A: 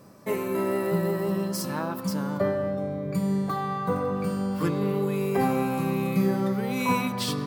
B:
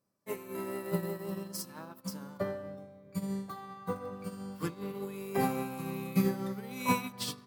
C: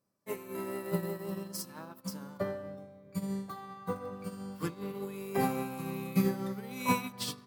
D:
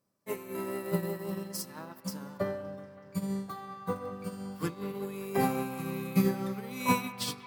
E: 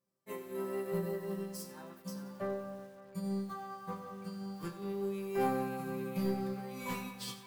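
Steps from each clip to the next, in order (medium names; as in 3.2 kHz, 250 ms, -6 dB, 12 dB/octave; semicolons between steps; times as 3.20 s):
treble shelf 3.6 kHz +7 dB; de-hum 73.1 Hz, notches 9; upward expansion 2.5:1, over -39 dBFS; trim -2 dB
no audible change
feedback echo behind a band-pass 189 ms, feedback 83%, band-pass 1.5 kHz, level -16 dB; trim +2 dB
saturation -25 dBFS, distortion -11 dB; chord resonator C3 sus4, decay 0.24 s; bit-crushed delay 91 ms, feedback 55%, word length 10-bit, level -12 dB; trim +6 dB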